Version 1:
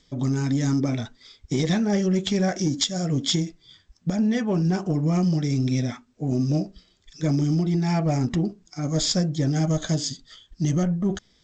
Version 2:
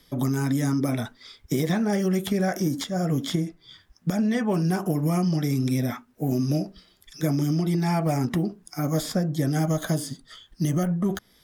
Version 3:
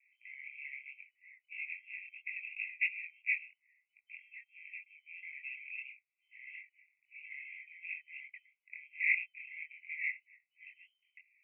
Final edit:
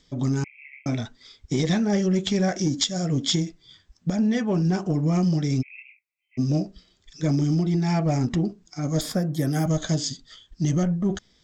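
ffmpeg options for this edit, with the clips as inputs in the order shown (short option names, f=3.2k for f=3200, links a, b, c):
-filter_complex "[2:a]asplit=2[a][b];[0:a]asplit=4[c][d][e][f];[c]atrim=end=0.442[g];[a]atrim=start=0.438:end=0.862[h];[d]atrim=start=0.858:end=5.63[i];[b]atrim=start=5.61:end=6.39[j];[e]atrim=start=6.37:end=9.012[k];[1:a]atrim=start=9.008:end=9.662[l];[f]atrim=start=9.658[m];[g][h]acrossfade=d=0.004:c1=hsin:c2=hsin[n];[n][i]acrossfade=d=0.004:c1=hsin:c2=hsin[o];[o][j]acrossfade=d=0.02:c1=tri:c2=tri[p];[p][k]acrossfade=d=0.02:c1=tri:c2=tri[q];[q][l]acrossfade=d=0.004:c1=hsin:c2=hsin[r];[r][m]acrossfade=d=0.004:c1=hsin:c2=hsin"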